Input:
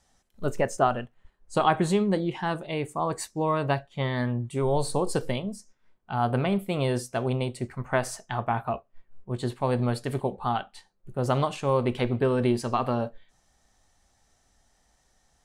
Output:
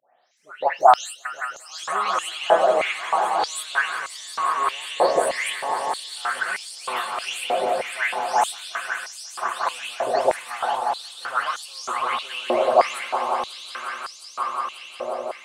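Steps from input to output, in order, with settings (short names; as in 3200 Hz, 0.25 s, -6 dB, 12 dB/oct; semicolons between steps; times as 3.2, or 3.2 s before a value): spectral delay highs late, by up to 0.371 s; swelling echo 0.179 s, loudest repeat 5, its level -11 dB; stepped high-pass 3.2 Hz 620–5100 Hz; gain +4.5 dB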